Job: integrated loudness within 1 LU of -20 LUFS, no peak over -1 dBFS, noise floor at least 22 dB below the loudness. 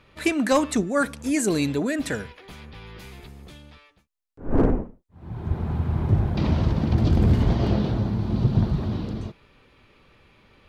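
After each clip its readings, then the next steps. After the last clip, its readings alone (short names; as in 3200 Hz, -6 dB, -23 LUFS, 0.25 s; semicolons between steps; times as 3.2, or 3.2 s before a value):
clipped 0.6%; flat tops at -12.0 dBFS; loudness -24.0 LUFS; peak -12.0 dBFS; loudness target -20.0 LUFS
-> clip repair -12 dBFS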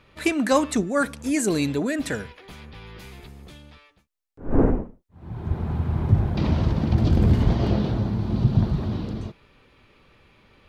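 clipped 0.0%; loudness -23.5 LUFS; peak -6.0 dBFS; loudness target -20.0 LUFS
-> gain +3.5 dB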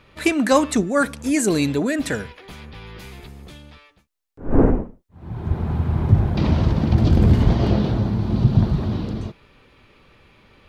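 loudness -20.0 LUFS; peak -2.5 dBFS; noise floor -59 dBFS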